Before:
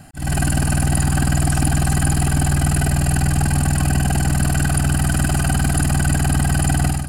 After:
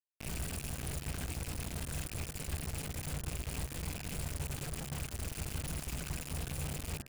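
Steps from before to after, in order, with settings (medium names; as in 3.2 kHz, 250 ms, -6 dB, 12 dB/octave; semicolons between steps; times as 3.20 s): rattle on loud lows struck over -24 dBFS, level -16 dBFS; saturation -12.5 dBFS, distortion -17 dB; delay 1021 ms -13 dB; compression 6:1, threshold -19 dBFS, peak gain reduction 4 dB; amplifier tone stack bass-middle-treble 6-0-2; granulator 130 ms, grains 25 per s, pitch spread up and down by 0 st; reverb removal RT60 1 s; whistle 710 Hz -66 dBFS; bit crusher 7-bit; de-hum 69.36 Hz, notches 27; trim +2.5 dB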